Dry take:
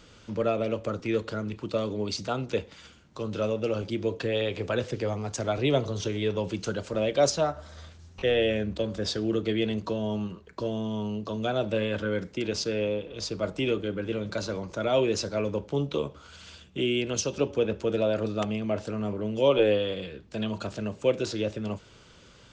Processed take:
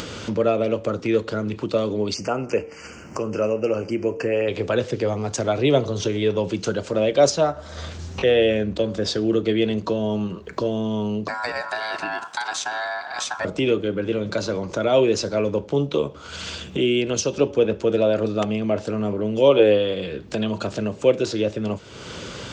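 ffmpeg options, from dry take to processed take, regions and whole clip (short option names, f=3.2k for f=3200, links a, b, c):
-filter_complex "[0:a]asettb=1/sr,asplit=3[a][b][c];[a]atrim=end=2.144[d];[b]atrim=start=2.14:end=4.48,asetpts=PTS-STARTPTS,afade=t=in:d=0.004:c=qsin,afade=t=out:st=2.336:d=0.004:c=qsin,asuperstop=centerf=3700:order=8:qfactor=2.1,equalizer=f=120:t=o:w=1.7:g=-4.5,bandreject=f=150.8:t=h:w=4,bandreject=f=301.6:t=h:w=4,bandreject=f=452.4:t=h:w=4,bandreject=f=603.2:t=h:w=4,bandreject=f=754:t=h:w=4,bandreject=f=904.8:t=h:w=4,bandreject=f=1.0556k:t=h:w=4,bandreject=f=1.2064k:t=h:w=4,bandreject=f=1.3572k:t=h:w=4,bandreject=f=1.508k:t=h:w=4,bandreject=f=1.6588k:t=h:w=4,bandreject=f=1.8096k:t=h:w=4,bandreject=f=1.9604k:t=h:w=4,bandreject=f=2.1112k:t=h:w=4,bandreject=f=2.262k:t=h:w=4,bandreject=f=2.4128k:t=h:w=4,bandreject=f=2.5636k:t=h:w=4,bandreject=f=2.7144k:t=h:w=4,bandreject=f=2.8652k:t=h:w=4,bandreject=f=3.016k:t=h:w=4,bandreject=f=3.1668k:t=h:w=4,bandreject=f=3.3176k:t=h:w=4,bandreject=f=3.4684k:t=h:w=4,bandreject=f=3.6192k:t=h:w=4,bandreject=f=3.77k:t=h:w=4,bandreject=f=3.9208k:t=h:w=4,bandreject=f=4.0716k:t=h:w=4[e];[c]atrim=start=4.476[f];[d][e]acrossfade=d=0.004:c1=hsin:c2=qsin[g];[g][f]acrossfade=d=0.004:c1=qsin:c2=hsin,asettb=1/sr,asplit=3[h][i][j];[h]atrim=end=11.284[k];[i]atrim=start=11.28:end=13.45,asetpts=PTS-STARTPTS,afade=t=in:d=0.004:c=qsin,afade=t=out:st=2.166:d=0.004:c=qsin,highshelf=f=5.8k:g=9.5,acrossover=split=220|3100[l][m][n];[l]acompressor=threshold=-42dB:ratio=4[o];[m]acompressor=threshold=-31dB:ratio=4[p];[n]acompressor=threshold=-34dB:ratio=4[q];[o][p][q]amix=inputs=3:normalize=0,aeval=exprs='val(0)*sin(2*PI*1200*n/s)':c=same[r];[j]atrim=start=13.446[s];[k][r]acrossfade=d=0.004:c1=hsin:c2=qsin[t];[t][s]acrossfade=d=0.004:c1=qsin:c2=hsin,highpass=72,equalizer=f=420:t=o:w=1.5:g=3,acompressor=mode=upward:threshold=-25dB:ratio=2.5,volume=4.5dB"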